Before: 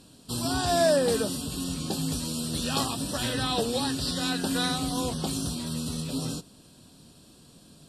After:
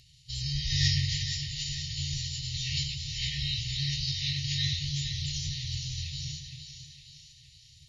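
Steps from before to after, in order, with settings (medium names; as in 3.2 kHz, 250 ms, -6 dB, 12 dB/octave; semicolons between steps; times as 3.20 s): formant-preserving pitch shift -11 st; two-band feedback delay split 940 Hz, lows 277 ms, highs 463 ms, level -8 dB; FFT band-reject 160–1800 Hz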